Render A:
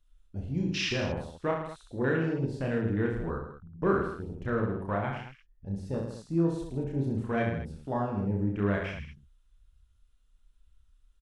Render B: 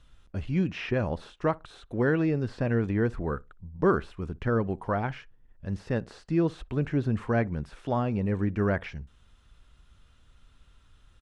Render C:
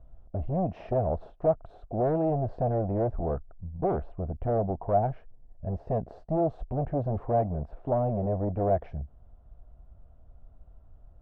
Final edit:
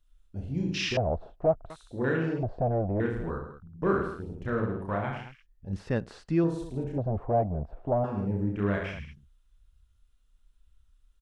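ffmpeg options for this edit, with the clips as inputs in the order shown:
-filter_complex "[2:a]asplit=3[s0][s1][s2];[0:a]asplit=5[s3][s4][s5][s6][s7];[s3]atrim=end=0.972[s8];[s0]atrim=start=0.968:end=1.702[s9];[s4]atrim=start=1.698:end=2.432[s10];[s1]atrim=start=2.428:end=3.002[s11];[s5]atrim=start=2.998:end=5.732[s12];[1:a]atrim=start=5.728:end=6.442[s13];[s6]atrim=start=6.438:end=6.982[s14];[s2]atrim=start=6.978:end=8.042[s15];[s7]atrim=start=8.038[s16];[s8][s9]acrossfade=d=0.004:c1=hsin:c2=hsin[s17];[s17][s10]acrossfade=d=0.004:c1=hsin:c2=hsin[s18];[s18][s11]acrossfade=d=0.004:c1=hsin:c2=hsin[s19];[s19][s12]acrossfade=d=0.004:c1=hsin:c2=hsin[s20];[s20][s13]acrossfade=d=0.004:c1=hsin:c2=hsin[s21];[s21][s14]acrossfade=d=0.004:c1=hsin:c2=hsin[s22];[s22][s15]acrossfade=d=0.004:c1=hsin:c2=hsin[s23];[s23][s16]acrossfade=d=0.004:c1=hsin:c2=hsin"

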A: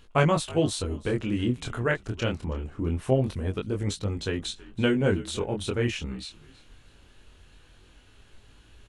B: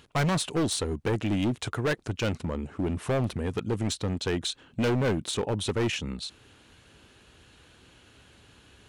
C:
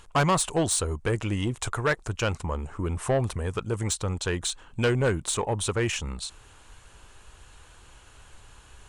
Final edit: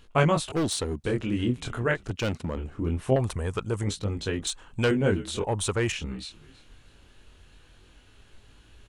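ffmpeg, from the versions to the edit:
-filter_complex "[1:a]asplit=2[s0][s1];[2:a]asplit=3[s2][s3][s4];[0:a]asplit=6[s5][s6][s7][s8][s9][s10];[s5]atrim=end=0.522[s11];[s0]atrim=start=0.518:end=1.042[s12];[s6]atrim=start=1.038:end=2.102[s13];[s1]atrim=start=2.098:end=2.572[s14];[s7]atrim=start=2.568:end=3.162[s15];[s2]atrim=start=3.158:end=3.842[s16];[s8]atrim=start=3.838:end=4.472[s17];[s3]atrim=start=4.468:end=4.912[s18];[s9]atrim=start=4.908:end=5.442[s19];[s4]atrim=start=5.438:end=5.922[s20];[s10]atrim=start=5.918[s21];[s11][s12]acrossfade=d=0.004:c1=hsin:c2=hsin[s22];[s22][s13]acrossfade=d=0.004:c1=hsin:c2=hsin[s23];[s23][s14]acrossfade=d=0.004:c1=hsin:c2=hsin[s24];[s24][s15]acrossfade=d=0.004:c1=hsin:c2=hsin[s25];[s25][s16]acrossfade=d=0.004:c1=hsin:c2=hsin[s26];[s26][s17]acrossfade=d=0.004:c1=hsin:c2=hsin[s27];[s27][s18]acrossfade=d=0.004:c1=hsin:c2=hsin[s28];[s28][s19]acrossfade=d=0.004:c1=hsin:c2=hsin[s29];[s29][s20]acrossfade=d=0.004:c1=hsin:c2=hsin[s30];[s30][s21]acrossfade=d=0.004:c1=hsin:c2=hsin"

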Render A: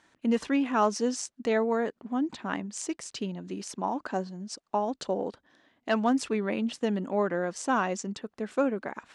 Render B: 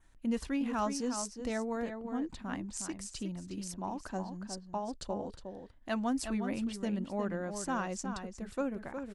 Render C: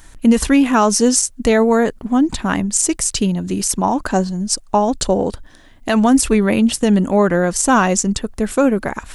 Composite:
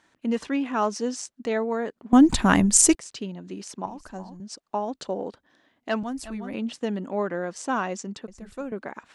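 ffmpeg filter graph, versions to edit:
-filter_complex "[1:a]asplit=3[s0][s1][s2];[0:a]asplit=5[s3][s4][s5][s6][s7];[s3]atrim=end=2.132[s8];[2:a]atrim=start=2.128:end=2.952[s9];[s4]atrim=start=2.948:end=3.862[s10];[s0]atrim=start=3.858:end=4.402[s11];[s5]atrim=start=4.398:end=6.032[s12];[s1]atrim=start=6.028:end=6.542[s13];[s6]atrim=start=6.538:end=8.282[s14];[s2]atrim=start=8.278:end=8.722[s15];[s7]atrim=start=8.718[s16];[s8][s9]acrossfade=d=0.004:c1=hsin:c2=hsin[s17];[s17][s10]acrossfade=d=0.004:c1=hsin:c2=hsin[s18];[s18][s11]acrossfade=d=0.004:c1=hsin:c2=hsin[s19];[s19][s12]acrossfade=d=0.004:c1=hsin:c2=hsin[s20];[s20][s13]acrossfade=d=0.004:c1=hsin:c2=hsin[s21];[s21][s14]acrossfade=d=0.004:c1=hsin:c2=hsin[s22];[s22][s15]acrossfade=d=0.004:c1=hsin:c2=hsin[s23];[s23][s16]acrossfade=d=0.004:c1=hsin:c2=hsin"

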